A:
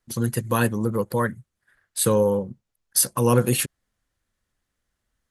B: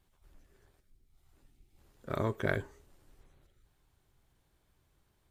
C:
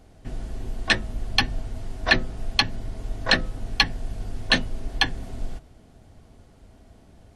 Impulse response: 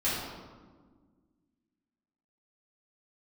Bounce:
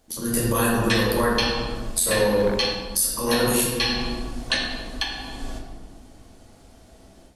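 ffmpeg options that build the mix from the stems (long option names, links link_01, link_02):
-filter_complex "[0:a]volume=-6dB,asplit=3[link_01][link_02][link_03];[link_02]volume=-6.5dB[link_04];[1:a]volume=2dB[link_05];[2:a]volume=-11.5dB,asplit=2[link_06][link_07];[link_07]volume=-5.5dB[link_08];[link_03]apad=whole_len=324245[link_09];[link_06][link_09]sidechaincompress=threshold=-46dB:ratio=8:attack=16:release=607[link_10];[link_01][link_05]amix=inputs=2:normalize=0,aeval=exprs='val(0)*sin(2*PI*86*n/s)':channel_layout=same,acompressor=threshold=-34dB:ratio=6,volume=0dB[link_11];[3:a]atrim=start_sample=2205[link_12];[link_04][link_08]amix=inputs=2:normalize=0[link_13];[link_13][link_12]afir=irnorm=-1:irlink=0[link_14];[link_10][link_11][link_14]amix=inputs=3:normalize=0,bass=frequency=250:gain=-8,treble=frequency=4000:gain=8,dynaudnorm=framelen=220:gausssize=3:maxgain=9.5dB,alimiter=limit=-9.5dB:level=0:latency=1:release=483"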